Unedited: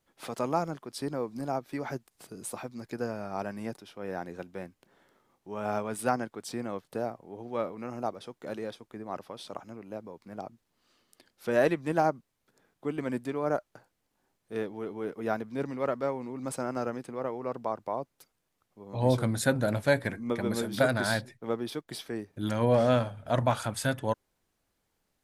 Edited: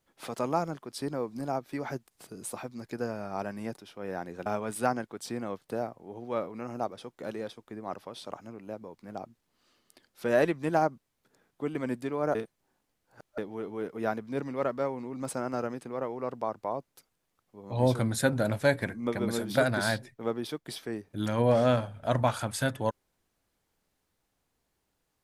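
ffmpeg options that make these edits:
ffmpeg -i in.wav -filter_complex "[0:a]asplit=4[link_01][link_02][link_03][link_04];[link_01]atrim=end=4.462[link_05];[link_02]atrim=start=5.688:end=13.582[link_06];[link_03]atrim=start=13.578:end=14.612,asetpts=PTS-STARTPTS,areverse[link_07];[link_04]atrim=start=14.608[link_08];[link_05][link_06]acrossfade=duration=0.004:curve1=hsin:curve2=hsin[link_09];[link_09][link_07]acrossfade=duration=0.004:curve1=hsin:curve2=hsin[link_10];[link_10][link_08]acrossfade=duration=0.004:curve1=hsin:curve2=hsin" out.wav

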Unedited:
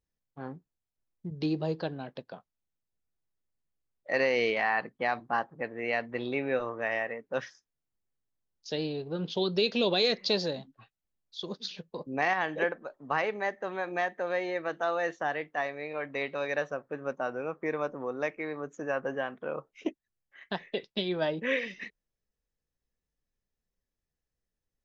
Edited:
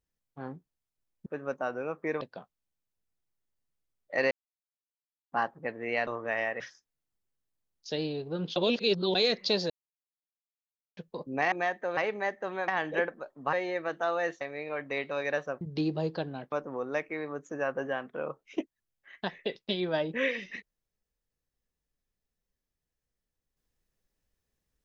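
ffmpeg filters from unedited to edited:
ffmpeg -i in.wav -filter_complex "[0:a]asplit=18[link_01][link_02][link_03][link_04][link_05][link_06][link_07][link_08][link_09][link_10][link_11][link_12][link_13][link_14][link_15][link_16][link_17][link_18];[link_01]atrim=end=1.262[link_19];[link_02]atrim=start=16.848:end=17.802[link_20];[link_03]atrim=start=2.168:end=4.27,asetpts=PTS-STARTPTS,afade=type=out:start_time=2.098:duration=0.004:curve=hsin[link_21];[link_04]atrim=start=4.27:end=5.28,asetpts=PTS-STARTPTS,volume=0[link_22];[link_05]atrim=start=5.28:end=6.032,asetpts=PTS-STARTPTS,afade=type=in:duration=0.004:curve=hsin[link_23];[link_06]atrim=start=6.608:end=7.142[link_24];[link_07]atrim=start=7.398:end=9.362[link_25];[link_08]atrim=start=9.358:end=9.952,asetpts=PTS-STARTPTS,areverse[link_26];[link_09]atrim=start=9.948:end=10.5,asetpts=PTS-STARTPTS,afade=type=out:start_time=0.548:duration=0.004:curve=hsin[link_27];[link_10]atrim=start=10.5:end=11.77,asetpts=PTS-STARTPTS,volume=0[link_28];[link_11]atrim=start=11.77:end=12.322,asetpts=PTS-STARTPTS,afade=type=in:duration=0.004:curve=hsin[link_29];[link_12]atrim=start=13.878:end=14.332[link_30];[link_13]atrim=start=13.168:end=13.882[link_31];[link_14]atrim=start=12.318:end=13.172[link_32];[link_15]atrim=start=14.328:end=15.212[link_33];[link_16]atrim=start=15.648:end=16.852[link_34];[link_17]atrim=start=1.258:end=2.172[link_35];[link_18]atrim=start=17.798[link_36];[link_19][link_20]acrossfade=duration=0.004:curve1=hsin:curve2=hsin[link_37];[link_21][link_22][link_23]concat=n=3:v=0:a=1[link_38];[link_37][link_38]acrossfade=duration=0.004:curve1=hsin:curve2=hsin[link_39];[link_39][link_24]acrossfade=duration=0.004:curve1=hsin:curve2=hsin[link_40];[link_40][link_25]acrossfade=duration=0.004:curve1=hsin:curve2=hsin[link_41];[link_41][link_26]acrossfade=duration=0.004:curve1=hsin:curve2=hsin[link_42];[link_27][link_28][link_29]concat=n=3:v=0:a=1[link_43];[link_42][link_43]acrossfade=duration=0.004:curve1=hsin:curve2=hsin[link_44];[link_44][link_30]acrossfade=duration=0.004:curve1=hsin:curve2=hsin[link_45];[link_45][link_31]acrossfade=duration=0.004:curve1=hsin:curve2=hsin[link_46];[link_46][link_32]acrossfade=duration=0.004:curve1=hsin:curve2=hsin[link_47];[link_47][link_33]acrossfade=duration=0.004:curve1=hsin:curve2=hsin[link_48];[link_48][link_34]acrossfade=duration=0.004:curve1=hsin:curve2=hsin[link_49];[link_49][link_35]acrossfade=duration=0.004:curve1=hsin:curve2=hsin[link_50];[link_50][link_36]acrossfade=duration=0.004:curve1=hsin:curve2=hsin" out.wav

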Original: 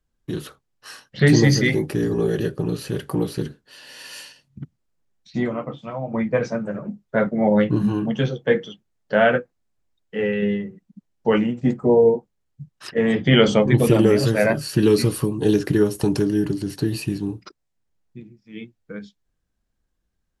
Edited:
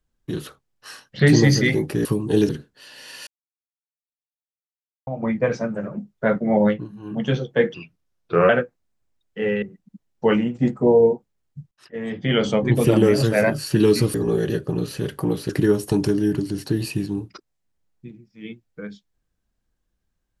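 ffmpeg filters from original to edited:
ffmpeg -i in.wav -filter_complex "[0:a]asplit=12[link_01][link_02][link_03][link_04][link_05][link_06][link_07][link_08][link_09][link_10][link_11][link_12];[link_01]atrim=end=2.052[link_13];[link_02]atrim=start=15.168:end=15.612[link_14];[link_03]atrim=start=3.398:end=4.18,asetpts=PTS-STARTPTS,afade=type=out:start_time=0.778:duration=0.004:curve=hsin[link_15];[link_04]atrim=start=4.18:end=5.98,asetpts=PTS-STARTPTS,volume=0[link_16];[link_05]atrim=start=5.98:end=7.85,asetpts=PTS-STARTPTS,afade=type=in:duration=0.004:curve=hsin,afade=type=out:start_time=1.59:duration=0.28:curve=qua:silence=0.0891251[link_17];[link_06]atrim=start=7.85:end=8.654,asetpts=PTS-STARTPTS,afade=type=in:duration=0.28:curve=qua:silence=0.0891251[link_18];[link_07]atrim=start=8.65:end=9.26,asetpts=PTS-STARTPTS,asetrate=35721,aresample=44100,atrim=end_sample=33211,asetpts=PTS-STARTPTS[link_19];[link_08]atrim=start=9.256:end=10.392[link_20];[link_09]atrim=start=10.648:end=12.74,asetpts=PTS-STARTPTS,afade=type=out:start_time=2.088:duration=0.004:curve=hsin:silence=0.1[link_21];[link_10]atrim=start=12.74:end=15.172,asetpts=PTS-STARTPTS,afade=type=in:duration=1.34:silence=0.1[link_22];[link_11]atrim=start=2.048:end=3.402[link_23];[link_12]atrim=start=15.608[link_24];[link_13][link_14]acrossfade=duration=0.004:curve1=hsin:curve2=hsin[link_25];[link_15][link_16][link_17][link_18]concat=n=4:v=0:a=1[link_26];[link_25][link_26]acrossfade=duration=0.004:curve1=hsin:curve2=hsin[link_27];[link_27][link_19]acrossfade=duration=0.004:curve1=hsin:curve2=hsin[link_28];[link_28][link_20]acrossfade=duration=0.004:curve1=hsin:curve2=hsin[link_29];[link_21][link_22]concat=n=2:v=0:a=1[link_30];[link_29][link_30]acrossfade=duration=0.004:curve1=hsin:curve2=hsin[link_31];[link_31][link_23]acrossfade=duration=0.004:curve1=hsin:curve2=hsin[link_32];[link_32][link_24]acrossfade=duration=0.004:curve1=hsin:curve2=hsin" out.wav

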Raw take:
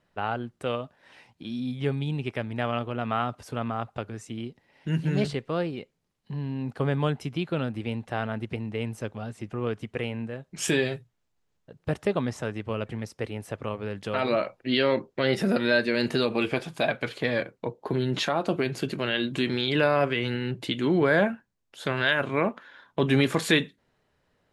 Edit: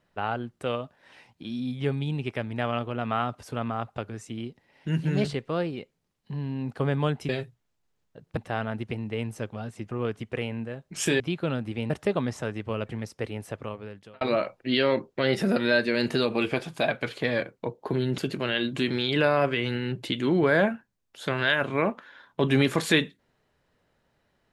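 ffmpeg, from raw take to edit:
ffmpeg -i in.wav -filter_complex "[0:a]asplit=7[link_01][link_02][link_03][link_04][link_05][link_06][link_07];[link_01]atrim=end=7.292[link_08];[link_02]atrim=start=10.818:end=11.902[link_09];[link_03]atrim=start=7.988:end=10.822[link_10];[link_04]atrim=start=7.288:end=7.992[link_11];[link_05]atrim=start=11.898:end=14.21,asetpts=PTS-STARTPTS,afade=type=out:start_time=1.542:duration=0.77[link_12];[link_06]atrim=start=14.21:end=18.182,asetpts=PTS-STARTPTS,afade=type=in:duration=0.004:curve=hsin[link_13];[link_07]atrim=start=18.768[link_14];[link_08][link_09]acrossfade=duration=0.004:curve1=hsin:curve2=hsin[link_15];[link_15][link_10]acrossfade=duration=0.004:curve1=hsin:curve2=hsin[link_16];[link_16][link_11]acrossfade=duration=0.004:curve1=hsin:curve2=hsin[link_17];[link_12][link_13]concat=n=2:v=0:a=1[link_18];[link_17][link_18]acrossfade=duration=0.004:curve1=hsin:curve2=hsin[link_19];[link_19][link_14]acrossfade=duration=0.004:curve1=hsin:curve2=hsin" out.wav

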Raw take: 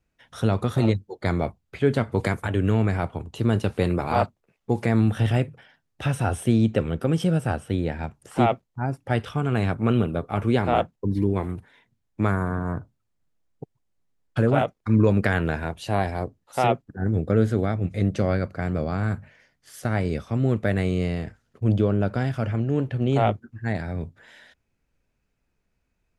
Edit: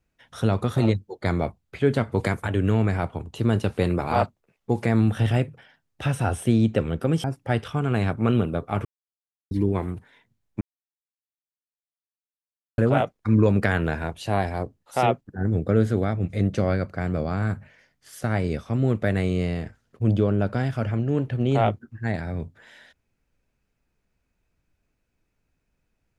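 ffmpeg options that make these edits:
ffmpeg -i in.wav -filter_complex "[0:a]asplit=6[link_01][link_02][link_03][link_04][link_05][link_06];[link_01]atrim=end=7.242[link_07];[link_02]atrim=start=8.848:end=10.46,asetpts=PTS-STARTPTS,afade=type=out:start_time=1.608:duration=0.004:curve=hsin[link_08];[link_03]atrim=start=10.46:end=11.12,asetpts=PTS-STARTPTS,volume=0[link_09];[link_04]atrim=start=11.12:end=12.22,asetpts=PTS-STARTPTS,afade=type=in:duration=0.004:curve=hsin,afade=type=out:start_time=1.096:duration=0.004:curve=hsin[link_10];[link_05]atrim=start=12.22:end=14.39,asetpts=PTS-STARTPTS,volume=0[link_11];[link_06]atrim=start=14.39,asetpts=PTS-STARTPTS,afade=type=in:duration=0.004:curve=hsin[link_12];[link_08][link_09][link_10][link_11][link_12]concat=n=5:v=0:a=1[link_13];[link_07][link_13]acrossfade=duration=0.004:curve1=hsin:curve2=hsin" out.wav

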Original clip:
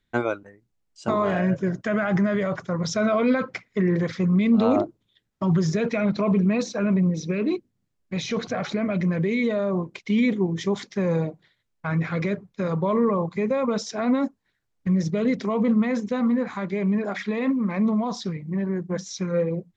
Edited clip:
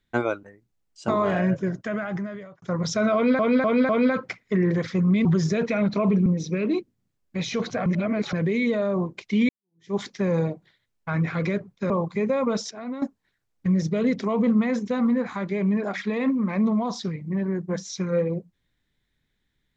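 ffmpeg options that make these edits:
ffmpeg -i in.wav -filter_complex "[0:a]asplit=13[link_01][link_02][link_03][link_04][link_05][link_06][link_07][link_08][link_09][link_10][link_11][link_12][link_13];[link_01]atrim=end=2.62,asetpts=PTS-STARTPTS,afade=type=out:start_time=1.48:duration=1.14[link_14];[link_02]atrim=start=2.62:end=3.392,asetpts=PTS-STARTPTS,afade=type=in:duration=0.004:curve=hsin[link_15];[link_03]atrim=start=3.138:end=3.392[link_16];[link_04]atrim=start=3.138:end=3.392[link_17];[link_05]atrim=start=3.138:end=4.502[link_18];[link_06]atrim=start=5.478:end=6.492[link_19];[link_07]atrim=start=7.028:end=8.632[link_20];[link_08]atrim=start=8.628:end=9.102,asetpts=PTS-STARTPTS,areverse[link_21];[link_09]atrim=start=9.098:end=10.26,asetpts=PTS-STARTPTS,afade=type=out:start_time=1.158:duration=0.004:curve=hsin[link_22];[link_10]atrim=start=10.26:end=12.672,asetpts=PTS-STARTPTS,afade=type=in:duration=0.46:curve=exp[link_23];[link_11]atrim=start=13.108:end=13.922[link_24];[link_12]atrim=start=13.918:end=14.232,asetpts=PTS-STARTPTS,volume=-11dB[link_25];[link_13]atrim=start=14.228[link_26];[link_14][link_15]concat=n=2:v=0:a=1[link_27];[link_27][link_16]acrossfade=duration=0.004:curve1=hsin:curve2=hsin[link_28];[link_28][link_17]acrossfade=duration=0.004:curve1=hsin:curve2=hsin[link_29];[link_29][link_18]acrossfade=duration=0.004:curve1=hsin:curve2=hsin[link_30];[link_30][link_19]acrossfade=duration=0.004:curve1=hsin:curve2=hsin[link_31];[link_31][link_20]acrossfade=duration=0.004:curve1=hsin:curve2=hsin[link_32];[link_32][link_21]acrossfade=duration=0.004:curve1=hsin:curve2=hsin[link_33];[link_22][link_23]concat=n=2:v=0:a=1[link_34];[link_33][link_34]acrossfade=duration=0.004:curve1=hsin:curve2=hsin[link_35];[link_35][link_24]acrossfade=duration=0.004:curve1=hsin:curve2=hsin[link_36];[link_36][link_25]acrossfade=duration=0.004:curve1=hsin:curve2=hsin[link_37];[link_37][link_26]acrossfade=duration=0.004:curve1=hsin:curve2=hsin" out.wav

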